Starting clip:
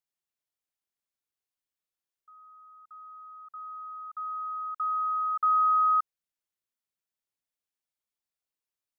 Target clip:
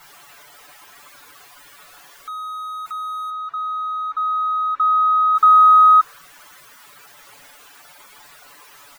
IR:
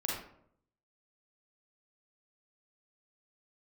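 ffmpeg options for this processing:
-filter_complex "[0:a]aeval=exprs='val(0)+0.5*0.0126*sgn(val(0))':channel_layout=same,asettb=1/sr,asplit=3[link_01][link_02][link_03];[link_01]atrim=end=3.304[link_04];[link_02]atrim=start=3.3:end=5.35,asetpts=PTS-STARTPTS,afade=type=in:duration=0.004:curve=qsin,afade=type=out:start_time=2.046:duration=0.004:curve=qsin,aemphasis=mode=reproduction:type=50kf[link_05];[link_03]atrim=start=5.346[link_06];[link_04][link_05]acrossfade=duration=0.004:curve1=hsin:curve2=qsin[link_07];[link_07][link_06]acrossfade=duration=0.004:curve1=qsin:curve2=hsin,afftdn=noise_reduction=21:noise_floor=-53,equalizer=frequency=1200:width_type=o:width=2.3:gain=13,aecho=1:1:6.9:0.55"

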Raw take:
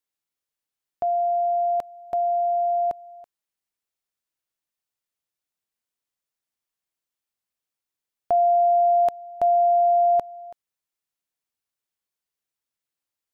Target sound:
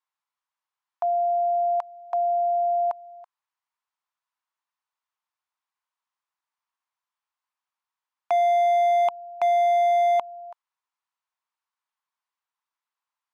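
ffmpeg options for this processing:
ffmpeg -i in.wav -af "highpass=frequency=990:width_type=q:width=3.8,aemphasis=mode=reproduction:type=50fm,asoftclip=type=hard:threshold=-17.5dB" out.wav

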